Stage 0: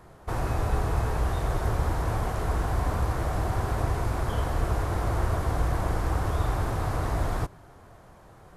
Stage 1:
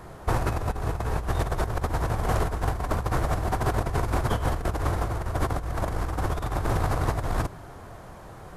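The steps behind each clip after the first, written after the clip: compressor with a negative ratio -29 dBFS, ratio -0.5; trim +4 dB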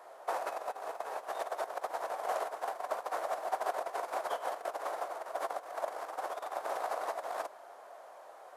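short-mantissa float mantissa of 6-bit; ladder high-pass 530 Hz, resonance 50%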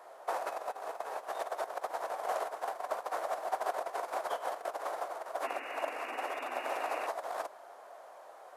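painted sound noise, 5.43–7.07 s, 240–2900 Hz -44 dBFS

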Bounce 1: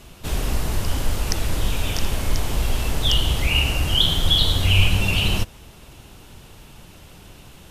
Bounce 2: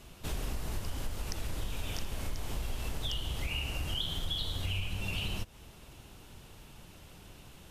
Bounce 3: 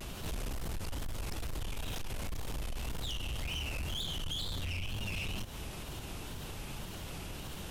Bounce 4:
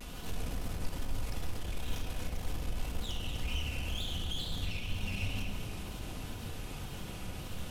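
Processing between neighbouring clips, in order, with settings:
compression, threshold -23 dBFS, peak gain reduction 13.5 dB; trim -8 dB
wow and flutter 120 cents; saturation -35 dBFS, distortion -11 dB; peak limiter -44 dBFS, peak gain reduction 9 dB; trim +11 dB
echo whose repeats swap between lows and highs 121 ms, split 850 Hz, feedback 56%, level -4 dB; simulated room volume 2600 m³, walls mixed, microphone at 1.9 m; trim -4 dB

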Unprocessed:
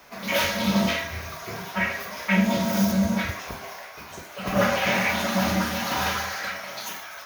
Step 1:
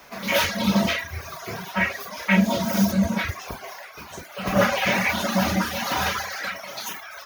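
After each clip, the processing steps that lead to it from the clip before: reverb removal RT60 0.82 s; trim +3 dB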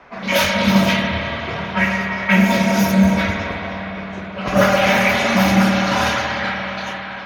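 level-controlled noise filter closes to 2 kHz, open at -17.5 dBFS; spring tank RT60 3.8 s, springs 52/57 ms, chirp 25 ms, DRR 0 dB; trim +4 dB

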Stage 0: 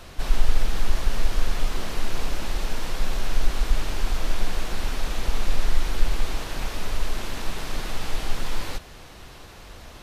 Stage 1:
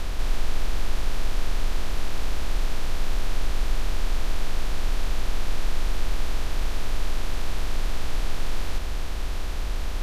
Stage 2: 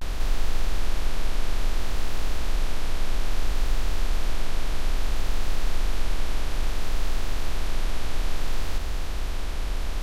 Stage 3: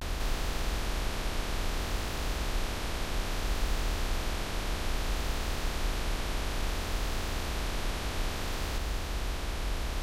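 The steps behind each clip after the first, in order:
spectral levelling over time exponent 0.2; trim -8.5 dB
vibrato 0.6 Hz 91 cents
high-pass 41 Hz 12 dB/octave

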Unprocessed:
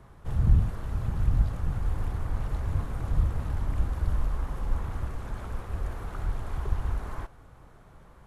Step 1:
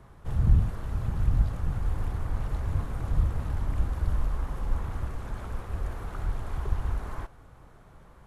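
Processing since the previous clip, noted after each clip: no audible change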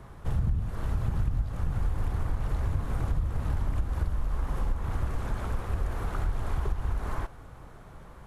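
compression 10:1, threshold -28 dBFS, peak gain reduction 14.5 dB; trim +5 dB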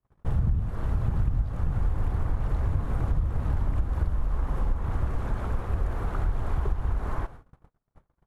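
treble shelf 2.5 kHz -9 dB; gate -42 dBFS, range -42 dB; trim +2.5 dB

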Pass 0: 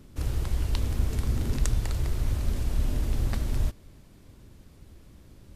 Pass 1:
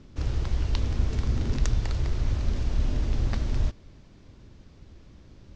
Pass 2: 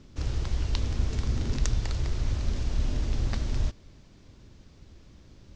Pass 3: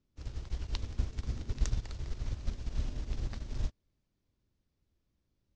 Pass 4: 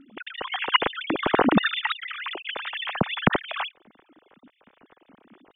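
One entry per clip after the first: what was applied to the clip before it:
steep low-pass 6.5 kHz 36 dB/octave; trim +1 dB
treble shelf 4.1 kHz +7 dB; trim -2 dB
upward expansion 2.5:1, over -37 dBFS; trim -2.5 dB
formants replaced by sine waves; trim +8 dB

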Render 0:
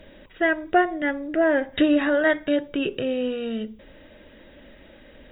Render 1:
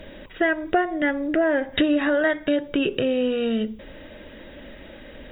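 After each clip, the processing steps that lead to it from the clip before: compression 3:1, threshold -26 dBFS, peak gain reduction 10 dB; trim +6.5 dB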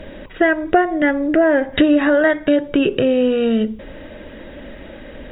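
treble shelf 3.4 kHz -10 dB; trim +7 dB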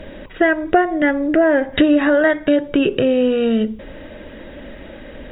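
no audible change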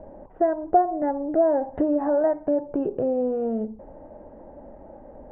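four-pole ladder low-pass 900 Hz, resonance 65%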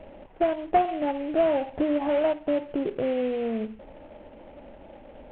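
CVSD coder 16 kbps; trim -2 dB

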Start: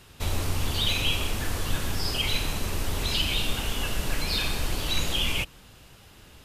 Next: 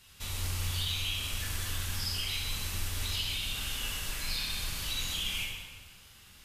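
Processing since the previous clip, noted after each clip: amplifier tone stack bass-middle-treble 5-5-5; compression, threshold -37 dBFS, peak gain reduction 7.5 dB; plate-style reverb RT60 1.6 s, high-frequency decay 0.75×, DRR -3.5 dB; trim +2 dB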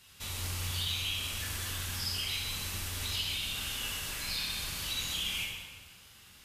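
high-pass 80 Hz 6 dB/octave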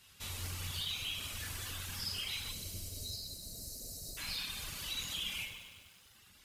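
spectral selection erased 2.53–4.17 s, 720–3800 Hz; reverb removal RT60 1.1 s; bit-crushed delay 99 ms, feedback 80%, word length 9-bit, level -12.5 dB; trim -3 dB

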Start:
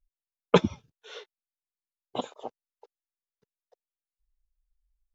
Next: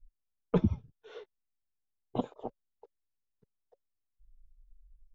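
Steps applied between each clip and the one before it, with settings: tilt EQ -4.5 dB/octave; band-stop 560 Hz, Q 16; peak limiter -10 dBFS, peak gain reduction 11 dB; trim -5 dB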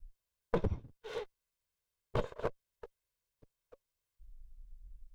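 comb filter that takes the minimum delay 1.9 ms; compression 6:1, threshold -36 dBFS, peak gain reduction 12 dB; trim +7.5 dB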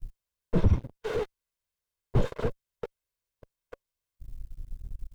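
dynamic bell 670 Hz, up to -5 dB, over -49 dBFS, Q 1.3; waveshaping leveller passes 3; slew-rate limiter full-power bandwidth 15 Hz; trim +4.5 dB

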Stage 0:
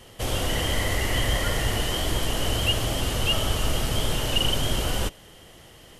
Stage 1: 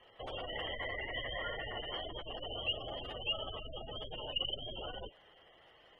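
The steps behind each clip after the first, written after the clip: spectral gate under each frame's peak -20 dB strong; three-band isolator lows -16 dB, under 460 Hz, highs -21 dB, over 3.5 kHz; trim -7.5 dB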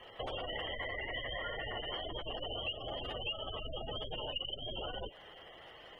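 compression 5:1, threshold -46 dBFS, peak gain reduction 14 dB; trim +8.5 dB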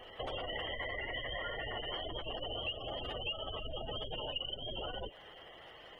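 reverse echo 423 ms -16.5 dB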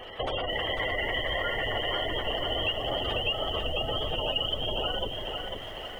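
bit-crushed delay 497 ms, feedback 55%, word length 11-bit, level -5 dB; trim +9 dB

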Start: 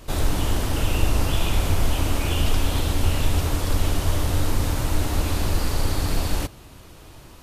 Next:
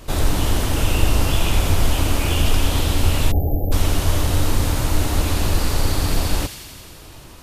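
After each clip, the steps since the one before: feedback echo behind a high-pass 87 ms, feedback 77%, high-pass 2.3 kHz, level -7.5 dB; spectral selection erased 3.32–3.72 s, 860–12000 Hz; trim +3.5 dB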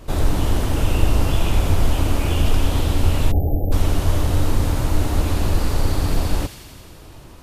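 tilt shelf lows +3.5 dB, about 1.5 kHz; trim -3 dB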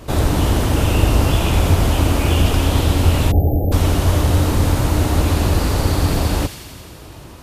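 high-pass 47 Hz; trim +5.5 dB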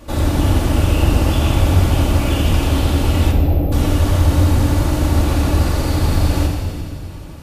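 simulated room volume 3400 m³, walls mixed, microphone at 2.4 m; trim -4.5 dB

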